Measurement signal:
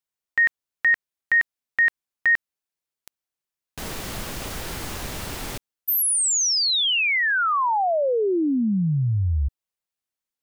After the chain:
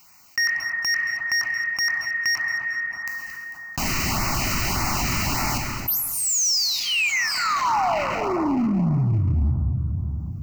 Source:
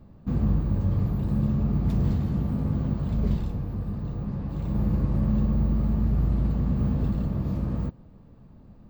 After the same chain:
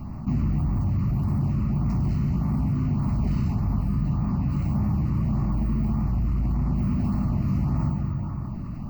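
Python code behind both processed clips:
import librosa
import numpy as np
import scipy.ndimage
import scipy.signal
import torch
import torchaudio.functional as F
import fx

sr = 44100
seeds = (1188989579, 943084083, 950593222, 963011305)

y = fx.peak_eq(x, sr, hz=1600.0, db=8.5, octaves=0.44)
y = fx.rev_plate(y, sr, seeds[0], rt60_s=2.6, hf_ratio=0.5, predelay_ms=0, drr_db=3.5)
y = np.clip(10.0 ** (20.0 / 20.0) * y, -1.0, 1.0) / 10.0 ** (20.0 / 20.0)
y = fx.notch(y, sr, hz=3300.0, q=8.2)
y = fx.rider(y, sr, range_db=3, speed_s=0.5)
y = fx.low_shelf(y, sr, hz=87.0, db=-6.0)
y = fx.fixed_phaser(y, sr, hz=2400.0, stages=8)
y = fx.echo_thinned(y, sr, ms=224, feedback_pct=38, hz=420.0, wet_db=-17.5)
y = fx.filter_lfo_notch(y, sr, shape='sine', hz=1.7, low_hz=730.0, high_hz=3300.0, q=1.9)
y = fx.env_flatten(y, sr, amount_pct=50)
y = y * librosa.db_to_amplitude(3.5)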